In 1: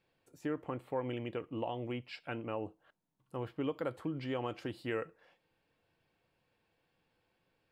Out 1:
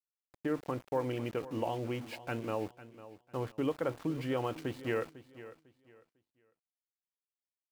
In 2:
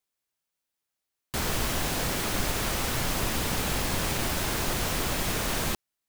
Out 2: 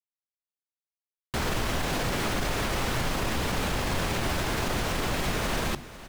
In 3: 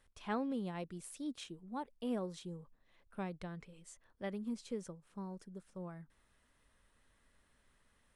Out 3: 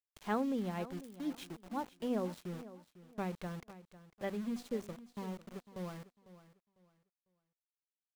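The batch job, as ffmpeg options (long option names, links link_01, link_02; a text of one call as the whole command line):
ffmpeg -i in.wav -af "lowpass=frequency=3400:poles=1,bandreject=frequency=48.59:width_type=h:width=4,bandreject=frequency=97.18:width_type=h:width=4,bandreject=frequency=145.77:width_type=h:width=4,bandreject=frequency=194.36:width_type=h:width=4,bandreject=frequency=242.95:width_type=h:width=4,bandreject=frequency=291.54:width_type=h:width=4,bandreject=frequency=340.13:width_type=h:width=4,alimiter=limit=-22.5dB:level=0:latency=1:release=24,aeval=exprs='val(0)*gte(abs(val(0)),0.00316)':channel_layout=same,aecho=1:1:500|1000|1500:0.158|0.0412|0.0107,volume=3.5dB" out.wav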